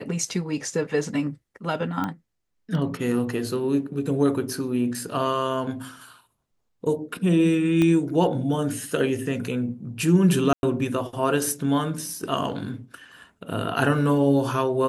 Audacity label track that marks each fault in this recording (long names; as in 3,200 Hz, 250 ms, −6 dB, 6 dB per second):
2.040000	2.040000	click −15 dBFS
7.820000	7.820000	click −12 dBFS
10.530000	10.630000	drop-out 101 ms